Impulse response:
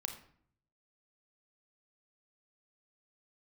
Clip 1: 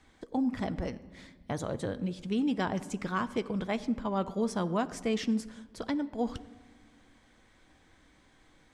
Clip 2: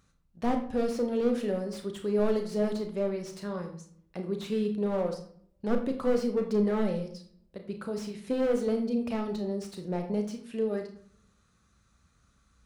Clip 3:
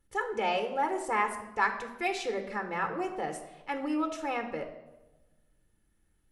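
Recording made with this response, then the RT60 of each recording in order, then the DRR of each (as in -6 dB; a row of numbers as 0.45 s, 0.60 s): 2; no single decay rate, 0.60 s, 1.1 s; 12.5 dB, 4.5 dB, 6.0 dB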